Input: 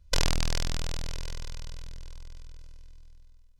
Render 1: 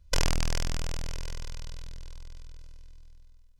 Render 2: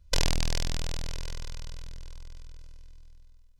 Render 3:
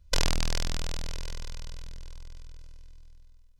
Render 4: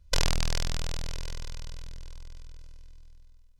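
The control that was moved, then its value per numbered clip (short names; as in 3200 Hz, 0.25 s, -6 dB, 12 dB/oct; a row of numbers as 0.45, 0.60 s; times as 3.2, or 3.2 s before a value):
dynamic EQ, frequency: 3900, 1300, 100, 280 Hz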